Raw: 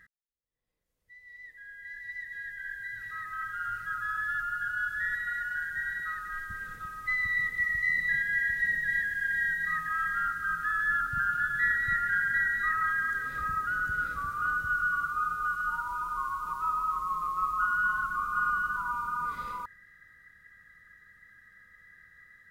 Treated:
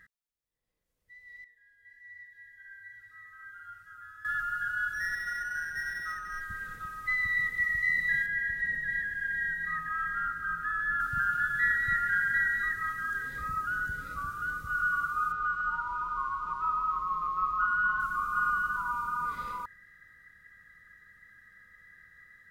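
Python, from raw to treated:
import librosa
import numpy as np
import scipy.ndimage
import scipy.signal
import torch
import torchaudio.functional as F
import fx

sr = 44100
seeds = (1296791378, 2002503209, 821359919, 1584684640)

y = fx.comb_fb(x, sr, f0_hz=93.0, decay_s=0.6, harmonics='odd', damping=0.0, mix_pct=90, at=(1.44, 4.25))
y = fx.resample_linear(y, sr, factor=6, at=(4.93, 6.41))
y = fx.high_shelf(y, sr, hz=2500.0, db=-9.0, at=(8.26, 11.0))
y = fx.notch_cascade(y, sr, direction='rising', hz=1.7, at=(12.63, 14.74), fade=0.02)
y = fx.lowpass(y, sr, hz=4100.0, slope=12, at=(15.32, 18.0))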